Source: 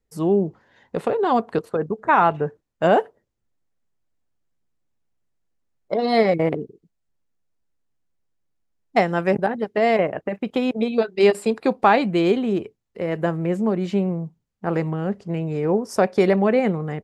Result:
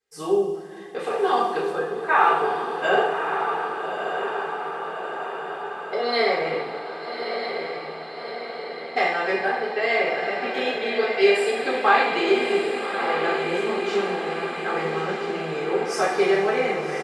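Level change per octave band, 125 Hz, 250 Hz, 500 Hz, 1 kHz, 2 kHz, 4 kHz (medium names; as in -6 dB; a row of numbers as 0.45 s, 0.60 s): -14.0 dB, -8.5 dB, -1.5 dB, +0.5 dB, +5.5 dB, +5.5 dB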